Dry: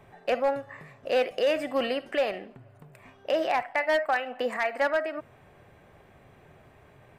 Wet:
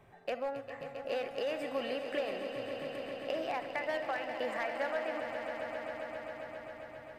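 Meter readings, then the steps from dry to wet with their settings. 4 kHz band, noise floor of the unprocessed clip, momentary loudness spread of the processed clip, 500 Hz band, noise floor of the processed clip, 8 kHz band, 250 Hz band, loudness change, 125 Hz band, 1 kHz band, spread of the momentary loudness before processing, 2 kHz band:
-7.5 dB, -56 dBFS, 8 LU, -8.0 dB, -51 dBFS, no reading, -6.5 dB, -10.0 dB, -5.0 dB, -8.5 dB, 12 LU, -8.0 dB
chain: compression, threshold -26 dBFS, peak gain reduction 6 dB; on a send: echo with a slow build-up 134 ms, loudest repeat 5, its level -11 dB; on the sum: trim -6.5 dB

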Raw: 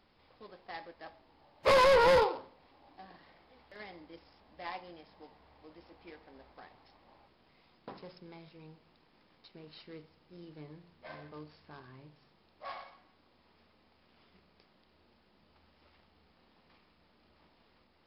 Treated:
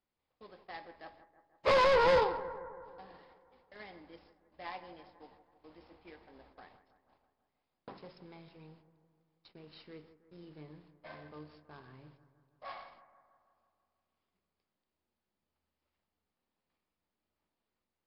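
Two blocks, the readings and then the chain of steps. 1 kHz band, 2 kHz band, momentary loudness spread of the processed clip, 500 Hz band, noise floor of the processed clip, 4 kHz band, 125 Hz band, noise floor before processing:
-1.5 dB, -2.0 dB, 24 LU, -2.0 dB, under -85 dBFS, -2.5 dB, -2.0 dB, -69 dBFS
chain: gate -59 dBFS, range -20 dB; low-pass 5.9 kHz 12 dB/octave; bucket-brigade echo 162 ms, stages 2048, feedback 62%, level -14 dB; trim -2 dB

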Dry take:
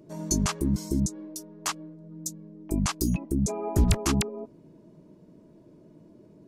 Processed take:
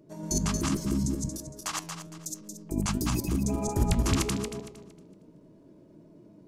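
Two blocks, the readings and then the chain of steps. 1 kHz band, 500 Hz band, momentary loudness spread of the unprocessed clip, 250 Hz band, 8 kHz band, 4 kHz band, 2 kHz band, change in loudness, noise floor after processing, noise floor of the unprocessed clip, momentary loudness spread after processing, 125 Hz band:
-0.5 dB, -1.5 dB, 16 LU, -1.5 dB, -1.0 dB, -1.0 dB, -1.0 dB, -2.0 dB, -56 dBFS, -55 dBFS, 13 LU, -1.5 dB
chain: backward echo that repeats 115 ms, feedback 52%, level 0 dB; flange 1.3 Hz, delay 6.6 ms, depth 5.9 ms, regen +84%

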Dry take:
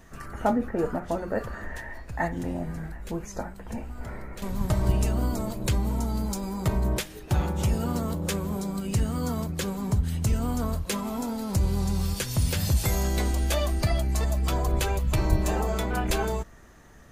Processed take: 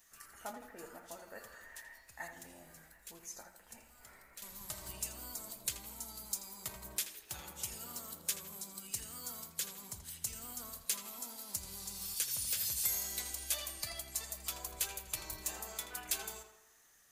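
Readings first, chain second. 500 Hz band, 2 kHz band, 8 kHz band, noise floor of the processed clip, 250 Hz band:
-22.5 dB, -12.5 dB, -1.0 dB, -63 dBFS, -28.0 dB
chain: pre-emphasis filter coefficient 0.97; tape echo 82 ms, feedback 57%, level -8 dB, low-pass 3.6 kHz; trim -1.5 dB

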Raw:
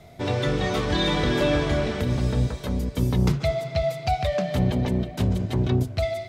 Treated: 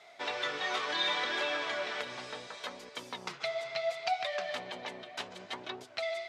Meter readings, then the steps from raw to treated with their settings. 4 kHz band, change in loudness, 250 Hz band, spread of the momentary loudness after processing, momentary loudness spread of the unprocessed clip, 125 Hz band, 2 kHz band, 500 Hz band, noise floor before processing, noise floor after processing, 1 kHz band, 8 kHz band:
-3.5 dB, -11.0 dB, -25.0 dB, 12 LU, 4 LU, -37.0 dB, -2.5 dB, -11.5 dB, -39 dBFS, -54 dBFS, -6.0 dB, -7.5 dB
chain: compression 2:1, threshold -25 dBFS, peak gain reduction 5 dB; distance through air 81 m; flange 0.69 Hz, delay 2.1 ms, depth 6.1 ms, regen +71%; high-pass 980 Hz 12 dB/octave; trim +6 dB

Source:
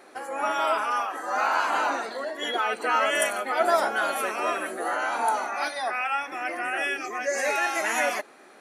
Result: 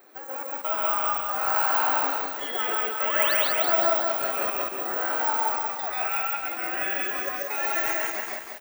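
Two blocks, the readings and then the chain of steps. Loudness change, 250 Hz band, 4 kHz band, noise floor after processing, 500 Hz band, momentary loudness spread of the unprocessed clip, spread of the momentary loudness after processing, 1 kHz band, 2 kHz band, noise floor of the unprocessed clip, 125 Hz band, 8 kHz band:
+2.0 dB, -2.5 dB, 0.0 dB, -39 dBFS, -2.5 dB, 7 LU, 8 LU, -2.5 dB, -2.5 dB, -51 dBFS, no reading, -2.5 dB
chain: trance gate "xx.xx.xx" 70 bpm -60 dB; painted sound rise, 3.06–3.34 s, 790–5000 Hz -26 dBFS; loudspeakers at several distances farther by 47 m -1 dB, 58 m -5 dB; careless resampling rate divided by 2×, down filtered, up zero stuff; bit-crushed delay 187 ms, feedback 55%, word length 6-bit, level -3.5 dB; trim -6.5 dB

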